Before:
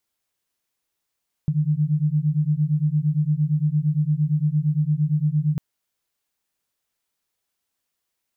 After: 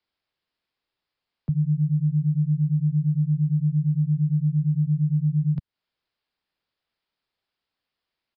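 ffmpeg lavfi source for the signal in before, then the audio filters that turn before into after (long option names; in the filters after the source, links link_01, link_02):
-f lavfi -i "aevalsrc='0.0891*(sin(2*PI*146.83*t)+sin(2*PI*155.56*t))':duration=4.1:sample_rate=44100"
-filter_complex "[0:a]acrossover=split=120|140|180[link_01][link_02][link_03][link_04];[link_04]acompressor=threshold=-46dB:ratio=6[link_05];[link_01][link_02][link_03][link_05]amix=inputs=4:normalize=0,aresample=11025,aresample=44100"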